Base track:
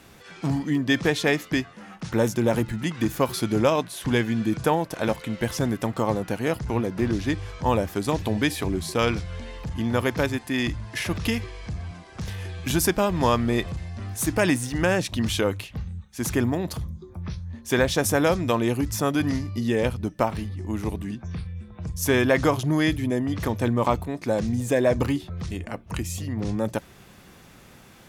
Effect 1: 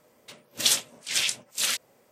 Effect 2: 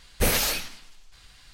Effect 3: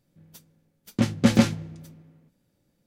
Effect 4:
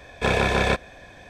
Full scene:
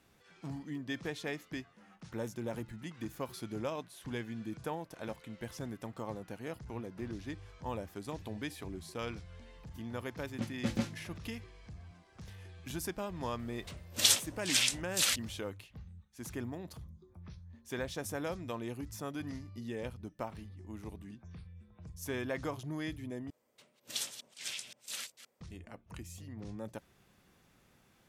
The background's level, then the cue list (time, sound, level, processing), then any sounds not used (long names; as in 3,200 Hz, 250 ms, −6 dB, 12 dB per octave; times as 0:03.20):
base track −17 dB
0:09.40: mix in 3 −15.5 dB
0:13.39: mix in 1 −3.5 dB
0:23.30: overwrite with 1 −15.5 dB + delay that plays each chunk backwards 130 ms, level −12 dB
not used: 2, 4